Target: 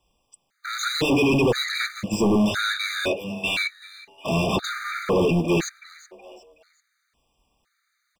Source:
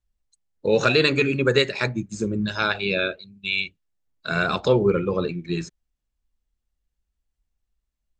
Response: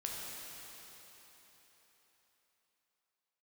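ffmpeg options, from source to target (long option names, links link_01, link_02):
-filter_complex "[0:a]acrossover=split=420|3000[link_01][link_02][link_03];[link_02]acompressor=threshold=-37dB:ratio=6[link_04];[link_01][link_04][link_03]amix=inputs=3:normalize=0,acrusher=bits=7:mode=log:mix=0:aa=0.000001,asplit=2[link_05][link_06];[link_06]highpass=frequency=720:poles=1,volume=37dB,asoftclip=type=tanh:threshold=-8dB[link_07];[link_05][link_07]amix=inputs=2:normalize=0,lowpass=frequency=2200:poles=1,volume=-6dB,asplit=4[link_08][link_09][link_10][link_11];[link_09]adelay=372,afreqshift=99,volume=-17dB[link_12];[link_10]adelay=744,afreqshift=198,volume=-25dB[link_13];[link_11]adelay=1116,afreqshift=297,volume=-32.9dB[link_14];[link_08][link_12][link_13][link_14]amix=inputs=4:normalize=0,afftfilt=real='re*gt(sin(2*PI*0.98*pts/sr)*(1-2*mod(floor(b*sr/1024/1200),2)),0)':imag='im*gt(sin(2*PI*0.98*pts/sr)*(1-2*mod(floor(b*sr/1024/1200),2)),0)':win_size=1024:overlap=0.75,volume=-3dB"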